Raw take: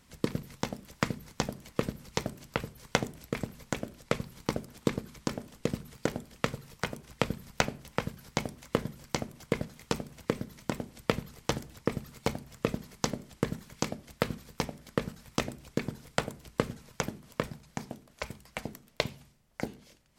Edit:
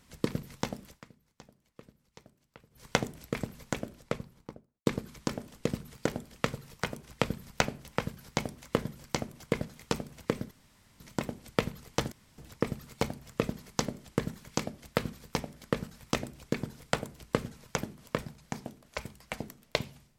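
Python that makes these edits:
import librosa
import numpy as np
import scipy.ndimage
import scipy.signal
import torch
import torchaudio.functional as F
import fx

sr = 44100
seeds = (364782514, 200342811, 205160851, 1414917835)

y = fx.studio_fade_out(x, sr, start_s=3.68, length_s=1.18)
y = fx.edit(y, sr, fx.fade_down_up(start_s=0.86, length_s=2.0, db=-22.5, fade_s=0.16),
    fx.insert_room_tone(at_s=10.51, length_s=0.49),
    fx.insert_room_tone(at_s=11.63, length_s=0.26), tone=tone)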